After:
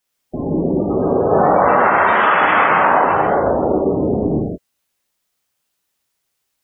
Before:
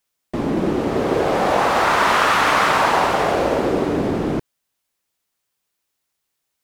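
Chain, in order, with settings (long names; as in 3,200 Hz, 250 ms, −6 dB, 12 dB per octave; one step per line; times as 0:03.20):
gate on every frequency bin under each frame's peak −15 dB strong
reverb whose tail is shaped and stops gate 190 ms flat, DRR −3 dB
0:01.31–0:01.87: envelope flattener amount 100%
level −1 dB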